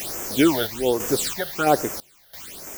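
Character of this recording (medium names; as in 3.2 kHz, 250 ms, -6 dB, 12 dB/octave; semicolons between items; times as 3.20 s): a quantiser's noise floor 6-bit, dither triangular; phasing stages 8, 1.2 Hz, lowest notch 310–4000 Hz; random-step tremolo 3 Hz, depth 95%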